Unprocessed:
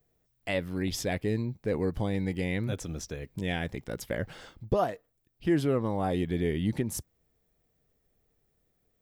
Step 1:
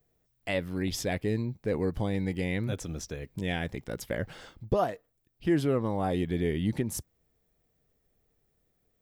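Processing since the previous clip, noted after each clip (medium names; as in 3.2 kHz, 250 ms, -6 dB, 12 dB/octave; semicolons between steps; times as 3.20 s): no audible change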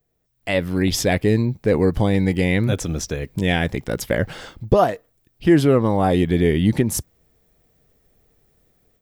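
level rider gain up to 12 dB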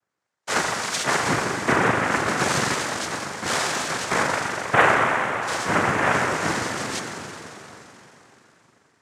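rippled Chebyshev high-pass 430 Hz, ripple 3 dB; spring tank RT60 3.5 s, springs 40 ms, chirp 75 ms, DRR -2 dB; noise-vocoded speech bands 3; trim -1 dB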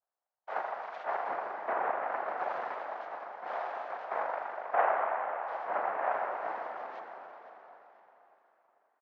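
ladder band-pass 800 Hz, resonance 55%; distance through air 160 m; feedback delay 502 ms, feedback 35%, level -16.5 dB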